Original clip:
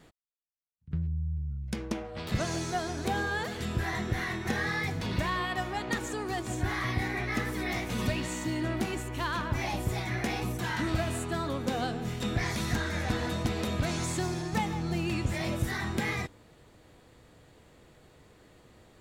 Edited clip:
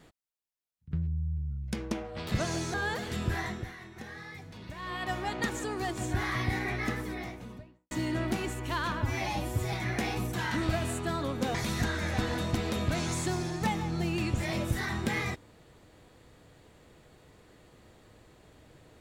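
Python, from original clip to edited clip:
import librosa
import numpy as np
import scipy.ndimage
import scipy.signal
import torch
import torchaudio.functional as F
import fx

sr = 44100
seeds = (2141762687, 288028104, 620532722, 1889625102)

y = fx.studio_fade_out(x, sr, start_s=7.13, length_s=1.27)
y = fx.edit(y, sr, fx.cut(start_s=2.74, length_s=0.49),
    fx.fade_down_up(start_s=3.83, length_s=1.81, db=-13.5, fade_s=0.39),
    fx.stretch_span(start_s=9.51, length_s=0.47, factor=1.5),
    fx.cut(start_s=11.8, length_s=0.66), tone=tone)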